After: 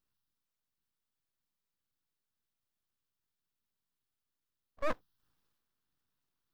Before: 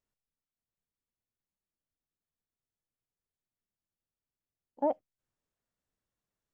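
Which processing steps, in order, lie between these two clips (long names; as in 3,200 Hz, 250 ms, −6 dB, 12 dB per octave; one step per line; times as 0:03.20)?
phaser with its sweep stopped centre 2,200 Hz, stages 6
transient designer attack −6 dB, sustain +6 dB
full-wave rectification
level +8 dB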